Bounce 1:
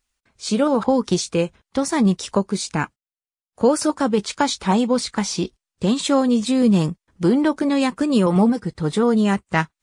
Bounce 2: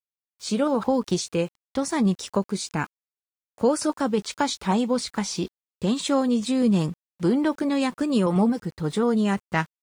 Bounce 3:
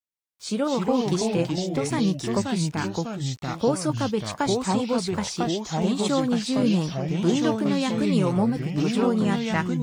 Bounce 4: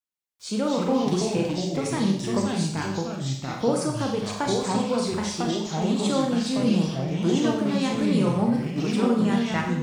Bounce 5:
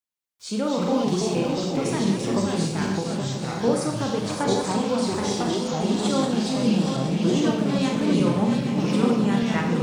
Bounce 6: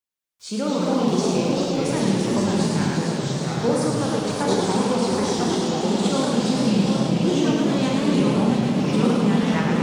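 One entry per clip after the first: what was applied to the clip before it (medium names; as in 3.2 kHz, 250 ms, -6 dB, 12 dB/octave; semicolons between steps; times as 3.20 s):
small samples zeroed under -43 dBFS; trim -4.5 dB
ever faster or slower copies 165 ms, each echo -3 st, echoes 3; trim -2 dB
Schroeder reverb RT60 0.65 s, combs from 30 ms, DRR 2 dB; trim -2.5 dB
backward echo that repeats 410 ms, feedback 65%, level -6.5 dB
modulated delay 108 ms, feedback 70%, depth 158 cents, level -4 dB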